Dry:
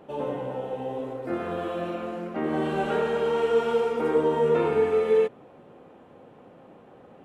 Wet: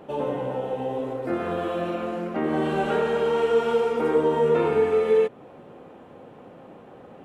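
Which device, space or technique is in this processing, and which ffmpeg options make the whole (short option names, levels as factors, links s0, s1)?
parallel compression: -filter_complex "[0:a]asplit=2[s0][s1];[s1]acompressor=threshold=0.0282:ratio=6,volume=0.708[s2];[s0][s2]amix=inputs=2:normalize=0"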